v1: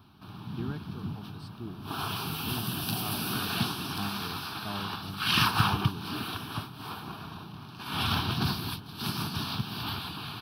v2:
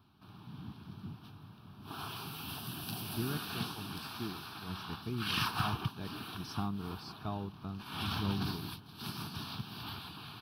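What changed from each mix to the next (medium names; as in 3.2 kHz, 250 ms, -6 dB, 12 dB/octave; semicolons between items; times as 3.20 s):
speech: entry +2.60 s; background -9.0 dB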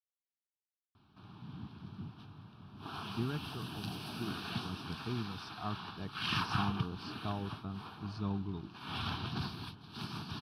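background: entry +0.95 s; master: add distance through air 66 m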